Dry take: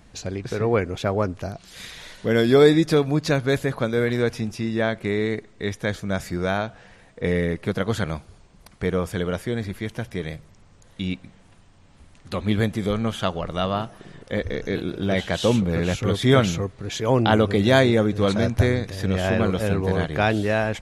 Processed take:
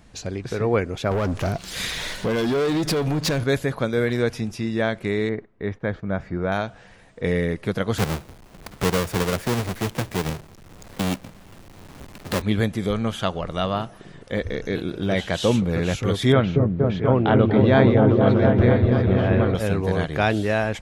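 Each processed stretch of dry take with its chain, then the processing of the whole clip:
0:01.11–0:03.44: downward compressor, threshold −24 dBFS + leveller curve on the samples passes 3
0:05.29–0:06.52: low-pass filter 1,700 Hz + noise gate −45 dBFS, range −9 dB
0:07.98–0:12.42: each half-wave held at its own peak + low-shelf EQ 140 Hz −5.5 dB + multiband upward and downward compressor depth 40%
0:16.32–0:19.55: high-frequency loss of the air 360 metres + echo whose low-pass opens from repeat to repeat 238 ms, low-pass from 400 Hz, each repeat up 1 octave, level 0 dB
whole clip: no processing

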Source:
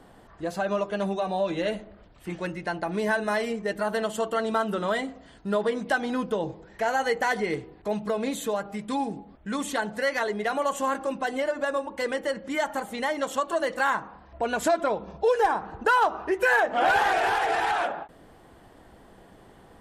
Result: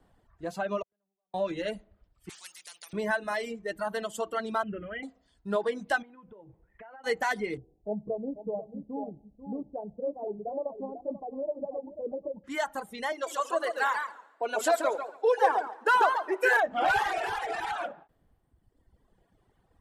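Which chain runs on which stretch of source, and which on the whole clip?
0:00.82–0:01.34: gate with flip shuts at −27 dBFS, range −37 dB + downward compressor 2 to 1, threshold −59 dBFS + high-frequency loss of the air 340 metres
0:02.29–0:02.93: high-pass filter 1,500 Hz + every bin compressed towards the loudest bin 4 to 1
0:04.63–0:05.03: Chebyshev low-pass filter 3,200 Hz, order 10 + parametric band 70 Hz +12.5 dB 0.95 octaves + phaser with its sweep stopped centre 2,200 Hz, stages 4
0:06.02–0:07.04: low-pass filter 2,600 Hz 24 dB per octave + downward compressor 12 to 1, threshold −35 dBFS
0:07.57–0:12.44: Butterworth low-pass 760 Hz 48 dB per octave + single-tap delay 491 ms −7 dB
0:13.12–0:16.57: high-pass filter 320 Hz 24 dB per octave + repeating echo 79 ms, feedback 59%, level −12 dB + feedback echo with a swinging delay time 140 ms, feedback 37%, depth 126 cents, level −4 dB
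whole clip: reverb reduction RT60 1.9 s; multiband upward and downward expander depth 40%; level −3.5 dB

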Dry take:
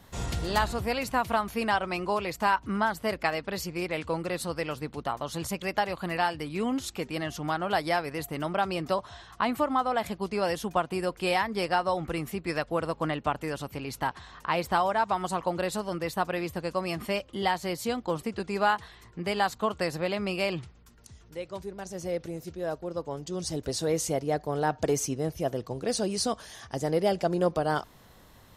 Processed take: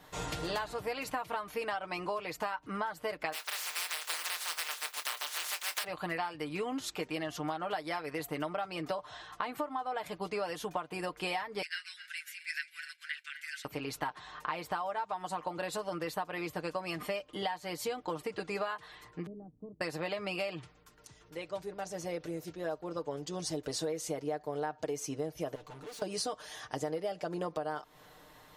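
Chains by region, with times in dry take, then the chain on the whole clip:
0:03.32–0:05.83: compressing power law on the bin magnitudes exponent 0.18 + high-pass filter 890 Hz + double-tracking delay 24 ms −12.5 dB
0:11.62–0:13.65: feedback delay that plays each chunk backwards 135 ms, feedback 59%, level −13.5 dB + Chebyshev high-pass with heavy ripple 1,500 Hz, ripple 3 dB
0:19.26–0:19.81: log-companded quantiser 4 bits + transistor ladder low-pass 310 Hz, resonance 30%
0:25.55–0:26.02: tube saturation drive 45 dB, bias 0.65 + comb filter 6.9 ms, depth 41%
whole clip: bass and treble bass −10 dB, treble −4 dB; comb filter 6.6 ms, depth 64%; downward compressor 10 to 1, threshold −32 dBFS

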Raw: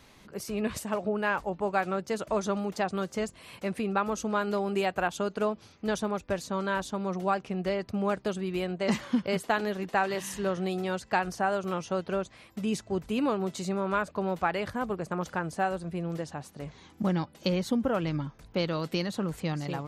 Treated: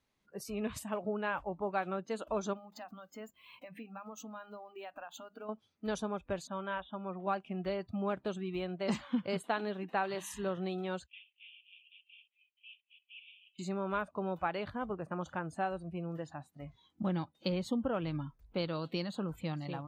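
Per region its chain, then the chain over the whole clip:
0:02.53–0:05.49: downward compressor 12 to 1, threshold −34 dBFS + mains-hum notches 50/100/150/200/250 Hz + linearly interpolated sample-rate reduction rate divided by 2×
0:06.47–0:07.27: Butterworth low-pass 3,600 Hz 96 dB per octave + low-shelf EQ 420 Hz −4.5 dB
0:11.06–0:13.59: variable-slope delta modulation 16 kbit/s + Butterworth high-pass 2,500 Hz 48 dB per octave
whole clip: noise reduction from a noise print of the clip's start 19 dB; dynamic equaliser 1,900 Hz, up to −4 dB, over −48 dBFS, Q 3.1; level −6 dB

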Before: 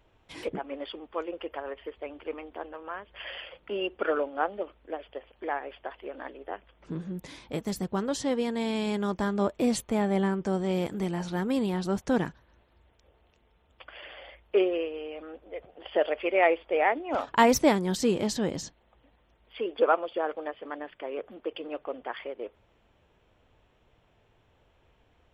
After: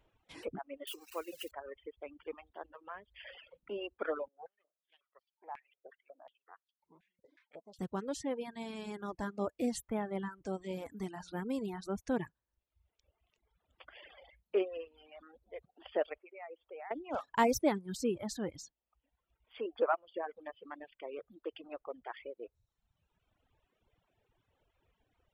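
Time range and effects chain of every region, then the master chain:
0:00.87–0:01.51: spike at every zero crossing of −29.5 dBFS + high-pass filter 61 Hz + parametric band 2,800 Hz +11 dB 0.32 octaves
0:04.28–0:07.79: gain on one half-wave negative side −3 dB + band-pass on a step sequencer 5.5 Hz 460–4,600 Hz
0:16.18–0:16.91: low-pass that shuts in the quiet parts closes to 1,100 Hz, open at −20.5 dBFS + three-way crossover with the lows and the highs turned down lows −15 dB, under 290 Hz, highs −13 dB, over 2,900 Hz + downward compressor 2.5 to 1, threshold −42 dBFS
whole clip: reverb reduction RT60 1.6 s; dynamic equaliser 3,500 Hz, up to −4 dB, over −46 dBFS, Q 0.86; reverb reduction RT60 0.68 s; level −7 dB

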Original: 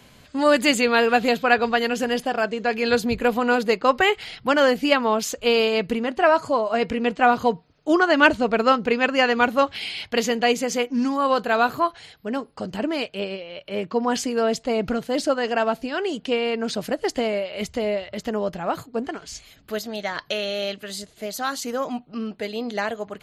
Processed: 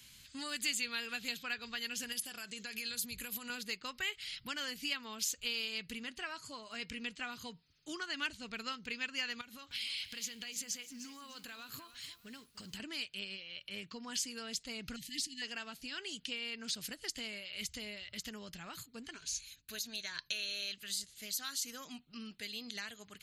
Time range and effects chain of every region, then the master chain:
0:02.12–0:03.50: parametric band 11,000 Hz +14.5 dB 1 octave + downward compressor, threshold −24 dBFS + high-pass filter 44 Hz
0:09.41–0:12.80: downward compressor 20 to 1, threshold −28 dBFS + feedback echo at a low word length 299 ms, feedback 35%, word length 9 bits, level −14 dB
0:14.96–0:15.42: transient designer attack −9 dB, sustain +1 dB + linear-phase brick-wall band-stop 330–1,700 Hz
0:19.13–0:20.72: EQ curve with evenly spaced ripples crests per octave 1.5, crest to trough 7 dB + downward expander −48 dBFS
whole clip: tilt shelving filter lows −7.5 dB, about 1,400 Hz; downward compressor 2 to 1, threshold −30 dBFS; guitar amp tone stack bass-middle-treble 6-0-2; level +8 dB

